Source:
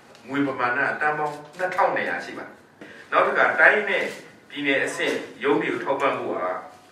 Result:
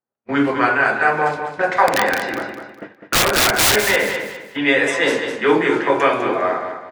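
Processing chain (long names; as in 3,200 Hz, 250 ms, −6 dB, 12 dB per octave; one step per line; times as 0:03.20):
low-pass that shuts in the quiet parts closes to 1,400 Hz, open at −18.5 dBFS
noise gate −41 dBFS, range −52 dB
in parallel at +1.5 dB: downward compressor 10 to 1, threshold −35 dBFS, peak gain reduction 24.5 dB
0:01.87–0:03.76: on the sum: wrap-around overflow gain 14 dB
repeating echo 203 ms, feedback 31%, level −8 dB
level +4.5 dB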